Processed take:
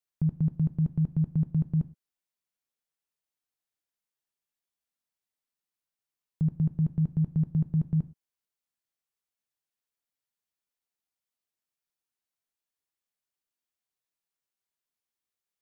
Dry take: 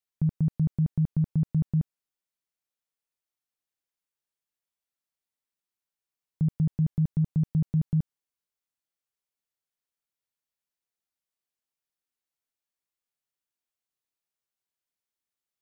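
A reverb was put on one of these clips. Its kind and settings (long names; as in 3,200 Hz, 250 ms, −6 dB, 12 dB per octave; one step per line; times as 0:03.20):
reverb whose tail is shaped and stops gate 140 ms falling, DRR 12 dB
level −1.5 dB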